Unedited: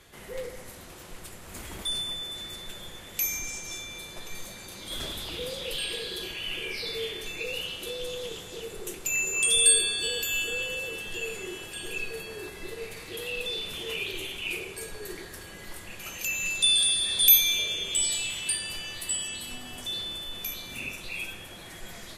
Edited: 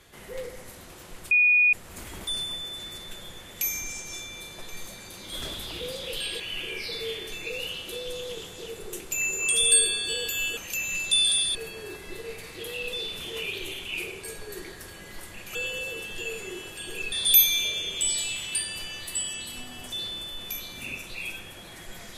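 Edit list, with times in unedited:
1.31 s: add tone 2.46 kHz -16 dBFS 0.42 s
5.98–6.34 s: delete
10.51–12.08 s: swap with 16.08–17.06 s

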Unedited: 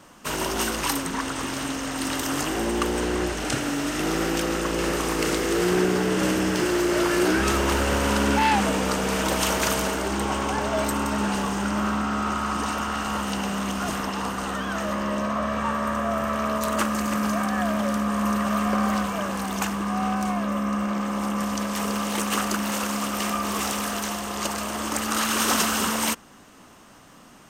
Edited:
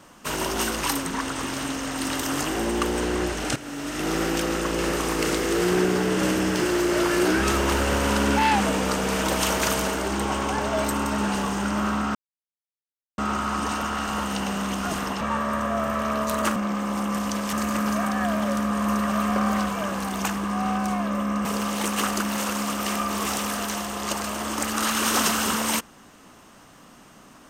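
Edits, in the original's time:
3.56–4.15 s: fade in, from -13.5 dB
12.15 s: insert silence 1.03 s
14.18–15.55 s: delete
20.82–21.79 s: move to 16.90 s

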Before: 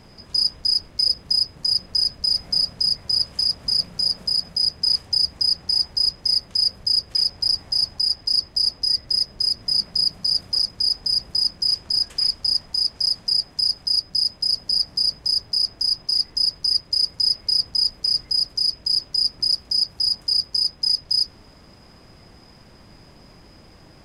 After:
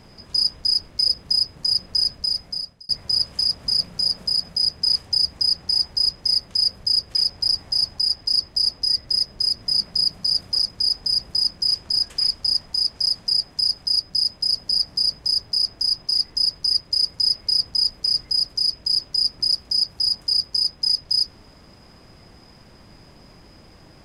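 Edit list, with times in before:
2.10–2.89 s: fade out

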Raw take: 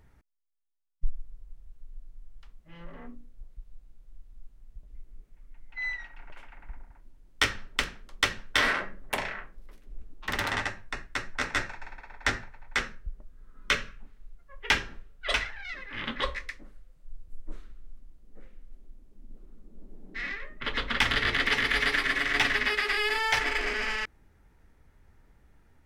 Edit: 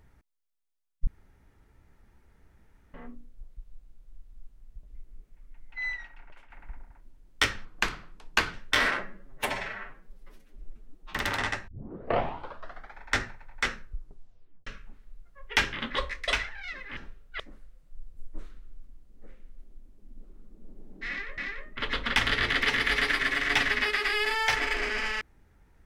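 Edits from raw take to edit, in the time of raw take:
1.07–2.94 s: room tone
5.92–6.50 s: fade out, to -8.5 dB
7.65–8.36 s: speed 80%
8.88–10.26 s: stretch 1.5×
10.81 s: tape start 1.34 s
12.99 s: tape stop 0.81 s
14.86–15.29 s: swap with 15.98–16.53 s
20.22–20.51 s: loop, 2 plays

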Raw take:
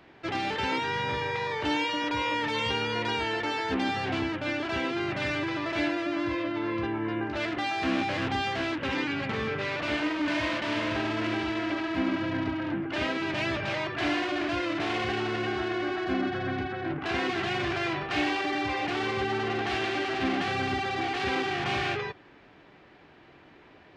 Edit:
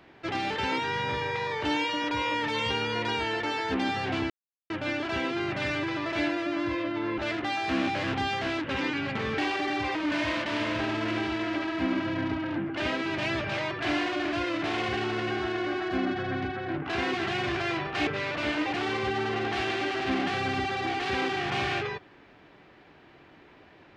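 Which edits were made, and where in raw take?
4.30 s: insert silence 0.40 s
6.78–7.32 s: delete
9.52–10.11 s: swap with 18.23–18.80 s

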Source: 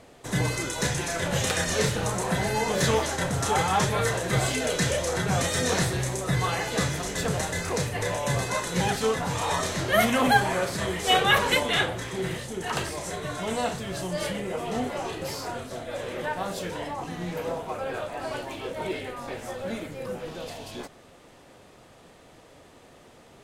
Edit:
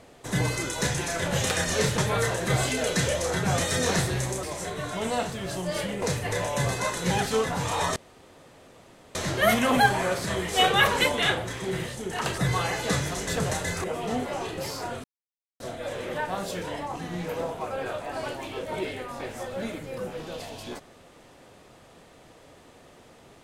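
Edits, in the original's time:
1.98–3.81 s: delete
6.26–7.72 s: swap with 12.89–14.48 s
9.66 s: insert room tone 1.19 s
15.68 s: insert silence 0.56 s

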